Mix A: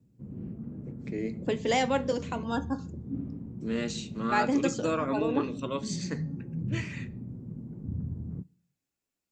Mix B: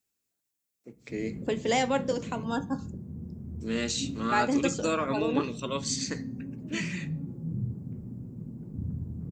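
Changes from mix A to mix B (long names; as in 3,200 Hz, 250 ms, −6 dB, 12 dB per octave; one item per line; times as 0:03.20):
first voice: add high-shelf EQ 2,800 Hz +10 dB
second voice: remove low-pass filter 7,000 Hz 12 dB per octave
background: entry +0.90 s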